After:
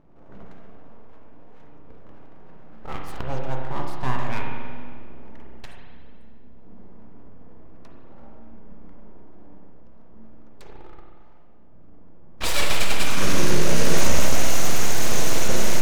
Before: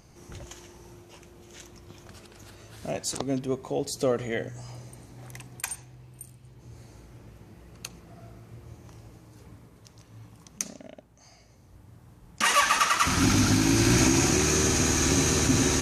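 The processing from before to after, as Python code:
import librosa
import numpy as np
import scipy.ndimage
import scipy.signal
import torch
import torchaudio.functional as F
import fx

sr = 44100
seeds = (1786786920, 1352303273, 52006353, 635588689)

y = fx.env_lowpass(x, sr, base_hz=820.0, full_db=-19.5)
y = np.abs(y)
y = fx.rev_spring(y, sr, rt60_s=1.9, pass_ms=(31, 45), chirp_ms=50, drr_db=0.0)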